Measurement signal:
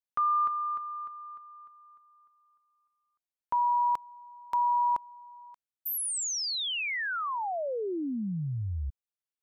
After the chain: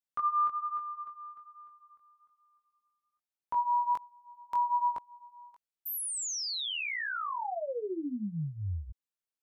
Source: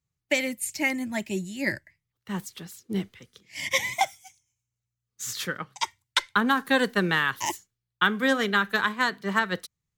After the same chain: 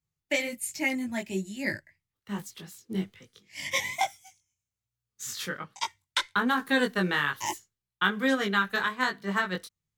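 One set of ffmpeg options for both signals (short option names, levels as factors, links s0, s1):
-af "flanger=delay=19:depth=2.6:speed=1.2"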